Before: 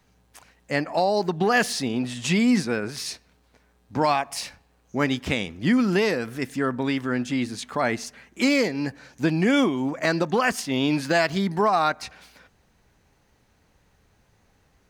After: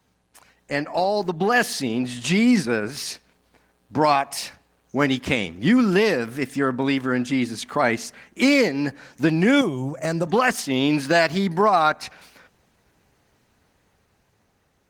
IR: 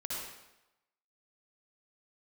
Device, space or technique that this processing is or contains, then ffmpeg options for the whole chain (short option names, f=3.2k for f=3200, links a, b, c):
video call: -filter_complex "[0:a]asettb=1/sr,asplit=3[a][b][c];[a]atrim=end=9.614[d];[b]atrim=start=9.61:end=10.27,asetpts=PTS-STARTPTS,afade=t=in:d=0.004:c=qsin,afade=t=out:st=0.656:d=0.004:c=qsin,equalizer=f=125:t=o:w=1:g=9,equalizer=f=250:t=o:w=1:g=-9,equalizer=f=1k:t=o:w=1:g=-6,equalizer=f=2k:t=o:w=1:g=-8,equalizer=f=4k:t=o:w=1:g=-10,equalizer=f=8k:t=o:w=1:g=6[e];[c]atrim=start=10.266[f];[d][e]acrossfade=d=0.004:c1=hsin:c2=qsin[g];[g][f]acrossfade=d=0.004:c1=qsin:c2=hsin,highpass=f=110:p=1,dynaudnorm=f=470:g=7:m=4.5dB" -ar 48000 -c:a libopus -b:a 20k